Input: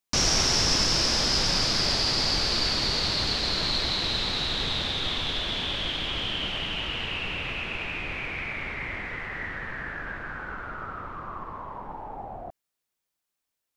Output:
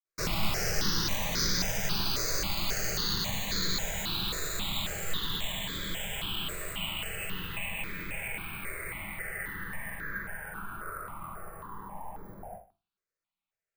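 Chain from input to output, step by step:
convolution reverb RT60 0.35 s, pre-delay 47 ms
bad sample-rate conversion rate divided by 4×, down filtered, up hold
step-sequenced phaser 3.7 Hz 840–2,800 Hz

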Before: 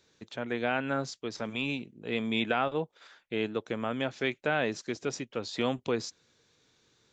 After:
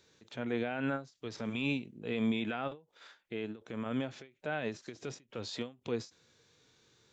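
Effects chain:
brickwall limiter −24.5 dBFS, peak gain reduction 10 dB
0:02.70–0:03.86: downward compressor 3 to 1, threshold −37 dBFS, peak gain reduction 6 dB
harmonic and percussive parts rebalanced harmonic +9 dB
every ending faded ahead of time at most 200 dB per second
level −5.5 dB

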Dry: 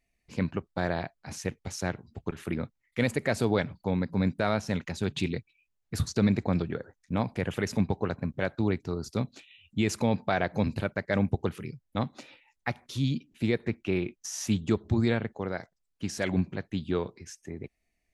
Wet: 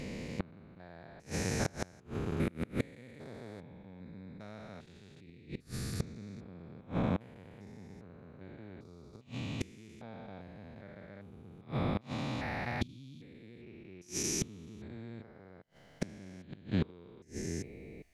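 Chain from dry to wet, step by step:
spectrum averaged block by block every 400 ms
gate with flip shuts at −29 dBFS, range −27 dB
level +10 dB

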